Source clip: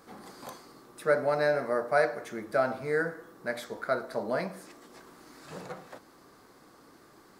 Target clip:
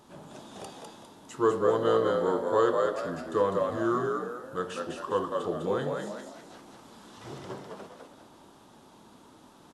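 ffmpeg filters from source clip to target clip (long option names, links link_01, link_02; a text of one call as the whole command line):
ffmpeg -i in.wav -filter_complex "[0:a]asetrate=33516,aresample=44100,asplit=6[link_01][link_02][link_03][link_04][link_05][link_06];[link_02]adelay=202,afreqshift=62,volume=-3.5dB[link_07];[link_03]adelay=404,afreqshift=124,volume=-12.1dB[link_08];[link_04]adelay=606,afreqshift=186,volume=-20.8dB[link_09];[link_05]adelay=808,afreqshift=248,volume=-29.4dB[link_10];[link_06]adelay=1010,afreqshift=310,volume=-38dB[link_11];[link_01][link_07][link_08][link_09][link_10][link_11]amix=inputs=6:normalize=0" out.wav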